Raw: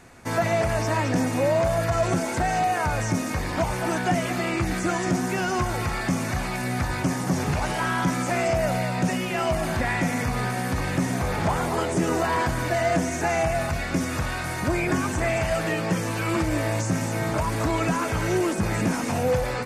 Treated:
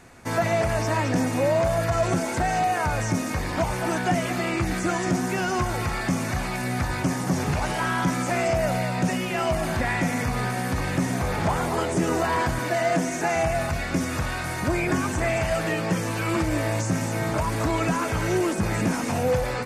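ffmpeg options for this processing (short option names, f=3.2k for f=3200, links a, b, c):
-filter_complex "[0:a]asettb=1/sr,asplit=3[a][b][c];[a]atrim=end=12.594[d];[b]atrim=start=12.59:end=13.36,asetpts=PTS-STARTPTS,afade=t=in:d=0.004:c=qsin,afade=t=out:st=0.766:d=0.004:c=qsin,highpass=f=130:w=0.5412,highpass=f=130:w=1.3066[e];[c]atrim=start=13.356[f];[d][e]acrossfade=d=0.004:c1=hsin:c2=qsin[g];[g][f]acrossfade=d=0.004:c1=qsin:c2=hsin"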